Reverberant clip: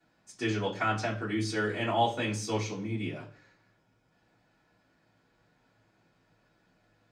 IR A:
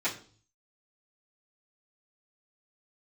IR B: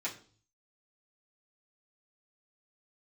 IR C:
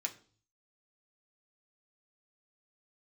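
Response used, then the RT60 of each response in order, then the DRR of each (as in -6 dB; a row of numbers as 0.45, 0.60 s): A; 0.45, 0.45, 0.45 s; -14.0, -8.5, 1.0 dB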